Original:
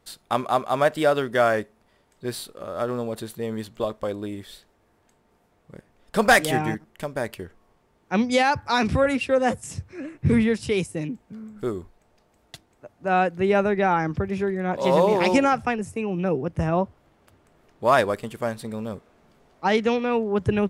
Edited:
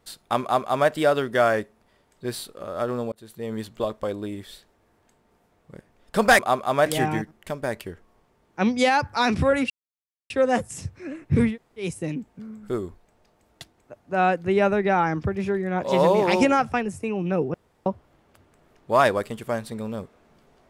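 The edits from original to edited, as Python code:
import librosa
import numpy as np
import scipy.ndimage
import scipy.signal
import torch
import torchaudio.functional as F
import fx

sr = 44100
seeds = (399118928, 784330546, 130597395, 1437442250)

y = fx.edit(x, sr, fx.duplicate(start_s=0.42, length_s=0.47, to_s=6.39),
    fx.fade_in_span(start_s=3.12, length_s=0.44),
    fx.insert_silence(at_s=9.23, length_s=0.6),
    fx.room_tone_fill(start_s=10.43, length_s=0.34, crossfade_s=0.16),
    fx.room_tone_fill(start_s=16.47, length_s=0.32), tone=tone)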